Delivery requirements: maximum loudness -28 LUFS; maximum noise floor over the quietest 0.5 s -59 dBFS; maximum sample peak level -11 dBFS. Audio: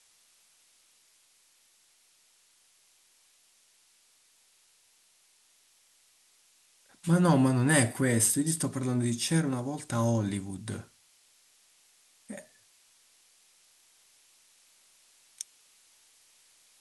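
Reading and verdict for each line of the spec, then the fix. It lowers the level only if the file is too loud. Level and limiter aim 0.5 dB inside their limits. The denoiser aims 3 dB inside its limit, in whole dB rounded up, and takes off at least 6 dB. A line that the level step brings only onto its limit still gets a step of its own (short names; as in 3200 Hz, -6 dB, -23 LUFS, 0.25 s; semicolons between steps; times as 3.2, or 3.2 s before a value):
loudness -27.5 LUFS: fail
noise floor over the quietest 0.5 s -65 dBFS: OK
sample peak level -10.0 dBFS: fail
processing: gain -1 dB; limiter -11.5 dBFS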